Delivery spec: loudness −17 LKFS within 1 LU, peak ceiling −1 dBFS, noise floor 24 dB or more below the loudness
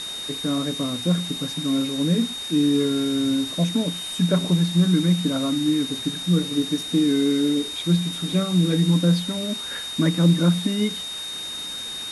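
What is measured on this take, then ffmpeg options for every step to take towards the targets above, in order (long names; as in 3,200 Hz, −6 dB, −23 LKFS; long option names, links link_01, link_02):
interfering tone 3,700 Hz; level of the tone −30 dBFS; background noise floor −32 dBFS; target noise floor −46 dBFS; integrated loudness −22.0 LKFS; sample peak −7.5 dBFS; target loudness −17.0 LKFS
→ -af "bandreject=frequency=3700:width=30"
-af "afftdn=noise_reduction=14:noise_floor=-32"
-af "volume=5dB"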